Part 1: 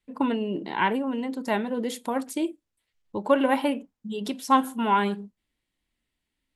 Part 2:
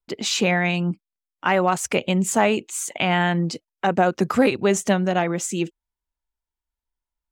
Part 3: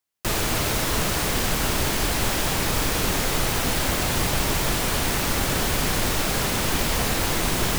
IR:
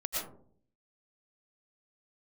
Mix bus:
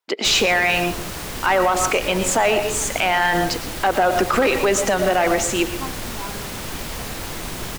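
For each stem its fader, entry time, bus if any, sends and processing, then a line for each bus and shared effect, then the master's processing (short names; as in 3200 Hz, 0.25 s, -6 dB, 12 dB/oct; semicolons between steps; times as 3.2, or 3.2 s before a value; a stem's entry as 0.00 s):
-13.5 dB, 1.30 s, no send, dry
+2.0 dB, 0.00 s, send -12 dB, HPF 280 Hz 12 dB/oct; overdrive pedal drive 14 dB, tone 3000 Hz, clips at -5 dBFS
-6.5 dB, 0.00 s, no send, dry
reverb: on, RT60 0.55 s, pre-delay 75 ms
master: limiter -8.5 dBFS, peak gain reduction 7.5 dB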